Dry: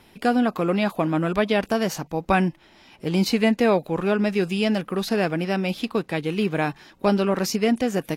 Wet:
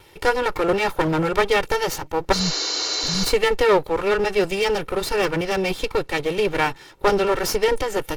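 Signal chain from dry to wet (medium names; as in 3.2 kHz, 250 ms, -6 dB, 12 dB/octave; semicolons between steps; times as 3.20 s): comb filter that takes the minimum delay 2.2 ms; spectral replace 2.35–3.22 s, 300–7300 Hz after; trim +5 dB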